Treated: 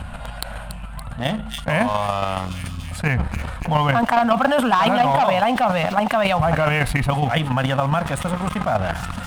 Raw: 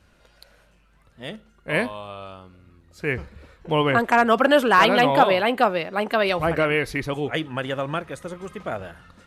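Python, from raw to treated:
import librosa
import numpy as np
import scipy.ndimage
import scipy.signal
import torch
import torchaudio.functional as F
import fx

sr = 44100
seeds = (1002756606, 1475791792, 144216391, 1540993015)

p1 = fx.curve_eq(x, sr, hz=(140.0, 250.0, 360.0, 730.0, 2000.0, 3200.0, 6000.0, 8700.0, 13000.0), db=(0, -4, -25, 2, -9, -7, -22, -4, -15))
p2 = fx.leveller(p1, sr, passes=2)
p3 = fx.chopper(p2, sr, hz=7.2, depth_pct=60, duty_pct=15)
p4 = p3 + fx.echo_wet_highpass(p3, sr, ms=284, feedback_pct=50, hz=4900.0, wet_db=-13, dry=0)
p5 = fx.env_flatten(p4, sr, amount_pct=70)
y = p5 * 10.0 ** (-1.5 / 20.0)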